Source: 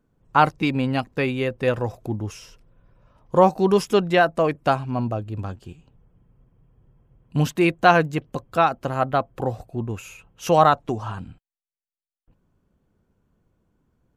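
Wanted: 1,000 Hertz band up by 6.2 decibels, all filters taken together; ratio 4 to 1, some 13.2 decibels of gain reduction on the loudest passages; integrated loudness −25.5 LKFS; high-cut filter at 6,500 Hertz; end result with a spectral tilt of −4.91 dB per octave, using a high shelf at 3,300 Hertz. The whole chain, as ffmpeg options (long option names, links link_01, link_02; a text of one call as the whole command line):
ffmpeg -i in.wav -af "lowpass=6500,equalizer=frequency=1000:width_type=o:gain=8,highshelf=frequency=3300:gain=5.5,acompressor=threshold=-21dB:ratio=4,volume=1.5dB" out.wav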